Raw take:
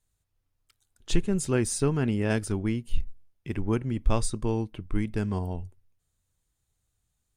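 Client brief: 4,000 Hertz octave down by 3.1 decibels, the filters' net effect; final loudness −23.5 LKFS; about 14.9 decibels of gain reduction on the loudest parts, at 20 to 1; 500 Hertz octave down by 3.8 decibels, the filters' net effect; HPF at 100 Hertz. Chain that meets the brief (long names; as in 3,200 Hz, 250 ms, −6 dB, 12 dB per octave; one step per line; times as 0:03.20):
high-pass filter 100 Hz
parametric band 500 Hz −5 dB
parametric band 4,000 Hz −4 dB
downward compressor 20 to 1, threshold −37 dBFS
level +20 dB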